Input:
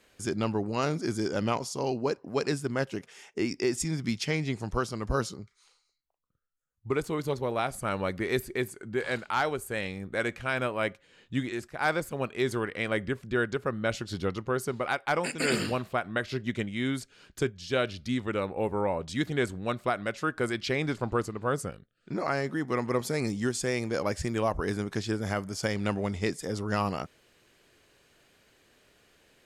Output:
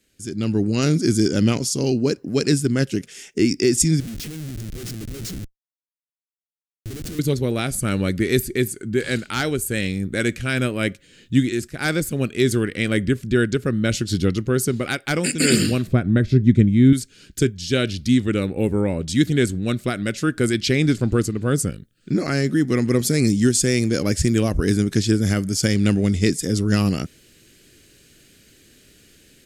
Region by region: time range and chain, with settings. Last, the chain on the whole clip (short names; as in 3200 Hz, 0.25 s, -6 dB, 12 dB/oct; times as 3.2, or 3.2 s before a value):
4–7.19 compressor 8:1, threshold -36 dBFS + Schmitt trigger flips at -45 dBFS
15.87–16.93 tilt -3.5 dB/oct + notch 2900 Hz, Q 9.7
whole clip: EQ curve 300 Hz 0 dB, 960 Hz -21 dB, 1500 Hz -9 dB, 8000 Hz +2 dB; AGC gain up to 14 dB